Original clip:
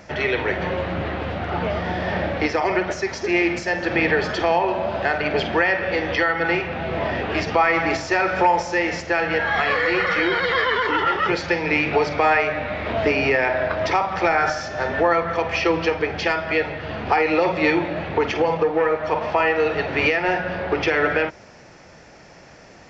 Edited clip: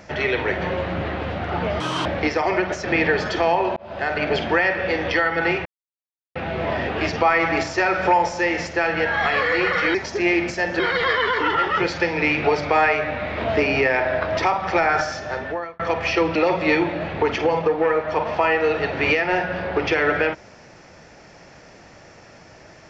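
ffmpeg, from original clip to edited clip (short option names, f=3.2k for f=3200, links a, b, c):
-filter_complex "[0:a]asplit=10[a][b][c][d][e][f][g][h][i][j];[a]atrim=end=1.804[k];[b]atrim=start=1.8:end=2.24,asetpts=PTS-STARTPTS,asetrate=76293,aresample=44100,atrim=end_sample=11216,asetpts=PTS-STARTPTS[l];[c]atrim=start=2.236:end=3.032[m];[d]atrim=start=3.878:end=4.8,asetpts=PTS-STARTPTS,afade=t=out:st=0.918:d=0.004:c=hsin[n];[e]atrim=start=4.8:end=6.69,asetpts=PTS-STARTPTS,afade=t=in:d=0.4,afade=t=out:st=1.886:d=0.004:c=hsin,apad=pad_dur=0.7[o];[f]atrim=start=6.69:end=10.282,asetpts=PTS-STARTPTS,afade=t=in:d=0.004:c=hsin[p];[g]atrim=start=3.028:end=3.882[q];[h]atrim=start=10.278:end=15.28,asetpts=PTS-STARTPTS,afade=t=out:st=4.342:d=0.66[r];[i]atrim=start=15.28:end=15.842,asetpts=PTS-STARTPTS,afade=t=in:d=0.004:c=hsin[s];[j]atrim=start=17.308[t];[k][l]acrossfade=d=0.004:c1=hsin:c2=hsin[u];[u][m]acrossfade=d=0.004:c1=hsin:c2=hsin[v];[n][o][p]concat=n=3:v=0:a=1[w];[v][w]acrossfade=d=0.004:c1=hsin:c2=hsin[x];[x][q]acrossfade=d=0.004:c1=hsin:c2=hsin[y];[r][s]concat=n=2:v=0:a=1[z];[y][z]acrossfade=d=0.004:c1=hsin:c2=hsin[aa];[aa][t]acrossfade=d=0.004:c1=hsin:c2=hsin"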